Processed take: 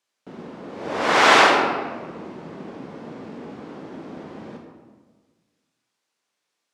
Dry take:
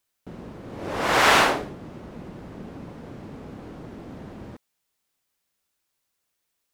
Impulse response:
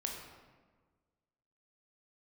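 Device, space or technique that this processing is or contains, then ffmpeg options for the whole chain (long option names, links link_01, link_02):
supermarket ceiling speaker: -filter_complex "[0:a]highpass=210,lowpass=6900[link_01];[1:a]atrim=start_sample=2205[link_02];[link_01][link_02]afir=irnorm=-1:irlink=0,volume=3.5dB"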